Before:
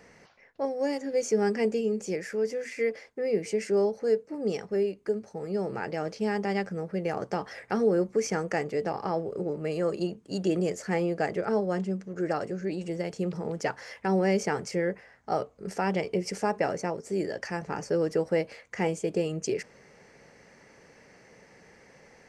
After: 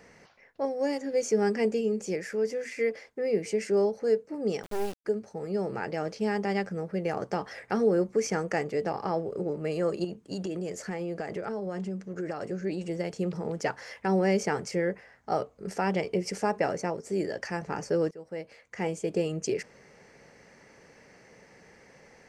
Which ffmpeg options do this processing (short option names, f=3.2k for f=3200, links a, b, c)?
-filter_complex "[0:a]asettb=1/sr,asplit=3[a][b][c];[a]atrim=end=4.634[d];[b]atrim=start=4.63:end=5.05,asetpts=PTS-STARTPTS,afade=t=in:d=0.004:c=qsin,afade=t=out:st=0.416:d=0.004:c=qsin,acrusher=bits=4:dc=4:mix=0:aa=0.000001[e];[c]atrim=start=5.046[f];[d][e]acrossfade=d=0.004:c1=hsin:c2=qsin[g];[g][f]acrossfade=d=0.004:c1=qsin:c2=hsin,asettb=1/sr,asplit=3[h][i][j];[h]atrim=end=10.044[k];[i]atrim=start=10.04:end=12.47,asetpts=PTS-STARTPTS,afade=t=in:d=0.004:c=qsin,afade=t=out:st=2.426:d=0.004:c=qsin,acompressor=threshold=-29dB:ratio=10:attack=3.2:release=140:knee=1:detection=peak[l];[j]atrim=start=12.466[m];[k][l]acrossfade=d=0.004:c1=hsin:c2=qsin[n];[n][m]acrossfade=d=0.004:c1=qsin:c2=hsin,asplit=2[o][p];[o]atrim=end=18.11,asetpts=PTS-STARTPTS,afade=t=out:st=18.106:d=0.004:c=hsin:silence=0.0668344[q];[p]atrim=start=18.11,asetpts=PTS-STARTPTS,afade=t=in:d=1.09:silence=0.0668344[r];[q][r]concat=n=2:v=0:a=1"